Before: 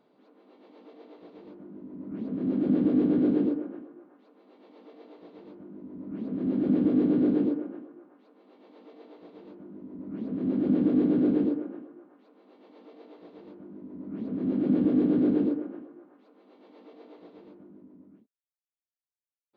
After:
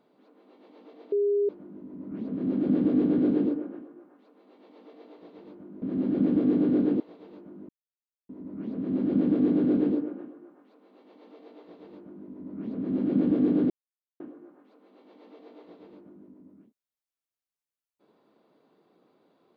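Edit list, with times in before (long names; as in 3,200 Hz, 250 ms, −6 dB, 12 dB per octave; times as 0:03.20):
0:01.12–0:01.49: beep over 407 Hz −21 dBFS
0:05.82–0:06.31: remove
0:07.49–0:09.14: remove
0:09.83: splice in silence 0.60 s
0:15.24–0:15.74: silence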